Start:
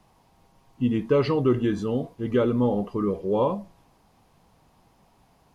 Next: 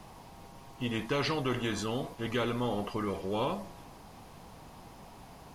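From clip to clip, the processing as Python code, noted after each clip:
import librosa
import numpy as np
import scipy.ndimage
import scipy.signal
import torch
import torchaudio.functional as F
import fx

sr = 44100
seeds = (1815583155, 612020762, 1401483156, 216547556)

y = fx.spectral_comp(x, sr, ratio=2.0)
y = F.gain(torch.from_numpy(y), -9.0).numpy()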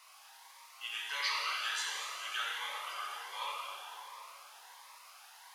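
y = scipy.signal.sosfilt(scipy.signal.butter(4, 1100.0, 'highpass', fs=sr, output='sos'), x)
y = fx.rev_plate(y, sr, seeds[0], rt60_s=3.6, hf_ratio=0.65, predelay_ms=0, drr_db=-4.0)
y = fx.notch_cascade(y, sr, direction='rising', hz=1.4)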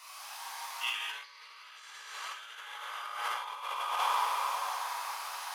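y = fx.rev_plate(x, sr, seeds[1], rt60_s=3.2, hf_ratio=0.75, predelay_ms=0, drr_db=-6.0)
y = fx.over_compress(y, sr, threshold_db=-39.0, ratio=-0.5)
y = fx.dynamic_eq(y, sr, hz=950.0, q=0.7, threshold_db=-47.0, ratio=4.0, max_db=5)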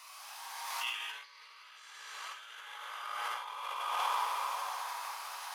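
y = fx.pre_swell(x, sr, db_per_s=28.0)
y = F.gain(torch.from_numpy(y), -3.5).numpy()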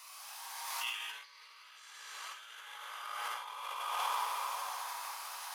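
y = fx.high_shelf(x, sr, hz=5800.0, db=6.5)
y = F.gain(torch.from_numpy(y), -2.5).numpy()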